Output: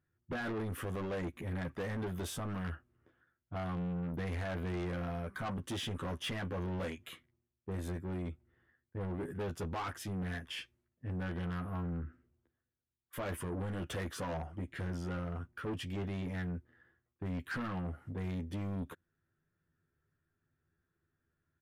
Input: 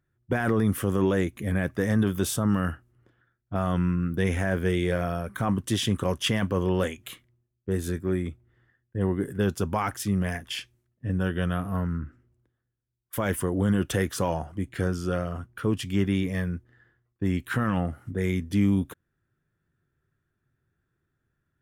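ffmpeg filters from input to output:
-filter_complex "[0:a]aresample=32000,aresample=44100,asplit=2[a][b];[b]aeval=exprs='0.0631*(abs(mod(val(0)/0.0631+3,4)-2)-1)':c=same,volume=-10dB[c];[a][c]amix=inputs=2:normalize=0,bass=f=250:g=-2,treble=f=4k:g=-9,asplit=2[d][e];[e]adelay=12,volume=-4dB[f];[d][f]amix=inputs=2:normalize=0,asoftclip=type=tanh:threshold=-26dB,volume=-8dB"

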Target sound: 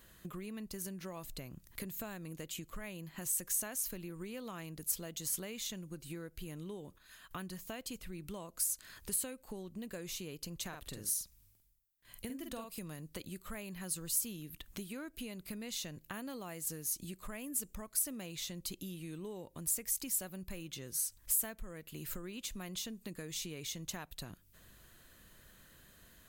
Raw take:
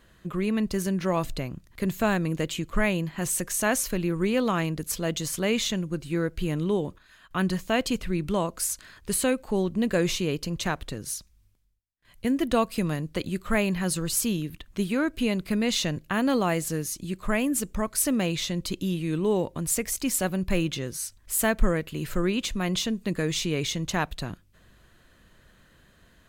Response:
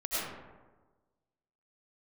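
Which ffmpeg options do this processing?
-filter_complex "[0:a]asettb=1/sr,asplit=3[a][b][c];[a]atrim=end=10.684[d];[b]atrim=start=10.68:end=12.79,asetpts=PTS-STARTPTS,afade=t=in:d=0.004:c=qsin,afade=t=out:st=2.106:d=0.004:c=qsin,asplit=2[e][f];[f]adelay=48,volume=-5dB[g];[e][g]amix=inputs=2:normalize=0,atrim=end_sample=93051[h];[c]atrim=start=12.786[i];[d][h]acrossfade=d=0.004:c1=hsin:c2=qsin[j];[j][i]acrossfade=d=0.004:c1=qsin:c2=hsin,acompressor=threshold=-38dB:ratio=6,aemphasis=mode=production:type=50fm,volume=-4.5dB"

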